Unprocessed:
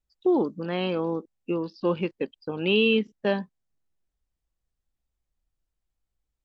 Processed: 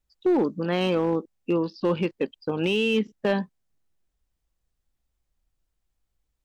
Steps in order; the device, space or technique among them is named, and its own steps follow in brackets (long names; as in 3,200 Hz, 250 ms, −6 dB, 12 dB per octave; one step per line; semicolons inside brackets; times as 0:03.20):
limiter into clipper (brickwall limiter −18.5 dBFS, peak gain reduction 8 dB; hard clipping −20.5 dBFS, distortion −24 dB)
level +4.5 dB